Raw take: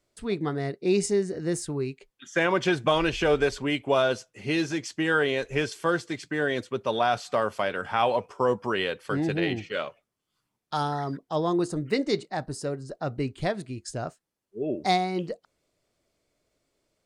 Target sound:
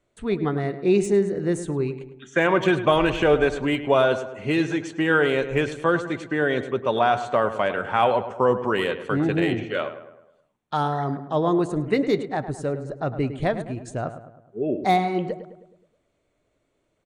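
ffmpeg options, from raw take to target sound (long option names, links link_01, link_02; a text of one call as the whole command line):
ffmpeg -i in.wav -filter_complex "[0:a]aemphasis=mode=reproduction:type=cd,aresample=22050,aresample=44100,equalizer=frequency=5000:width=4.7:gain=-14,asplit=2[link_01][link_02];[link_02]adelay=105,lowpass=frequency=2200:poles=1,volume=-11dB,asplit=2[link_03][link_04];[link_04]adelay=105,lowpass=frequency=2200:poles=1,volume=0.52,asplit=2[link_05][link_06];[link_06]adelay=105,lowpass=frequency=2200:poles=1,volume=0.52,asplit=2[link_07][link_08];[link_08]adelay=105,lowpass=frequency=2200:poles=1,volume=0.52,asplit=2[link_09][link_10];[link_10]adelay=105,lowpass=frequency=2200:poles=1,volume=0.52,asplit=2[link_11][link_12];[link_12]adelay=105,lowpass=frequency=2200:poles=1,volume=0.52[link_13];[link_01][link_03][link_05][link_07][link_09][link_11][link_13]amix=inputs=7:normalize=0,acrossover=split=2500[link_14][link_15];[link_15]asoftclip=type=hard:threshold=-33.5dB[link_16];[link_14][link_16]amix=inputs=2:normalize=0,volume=4dB" out.wav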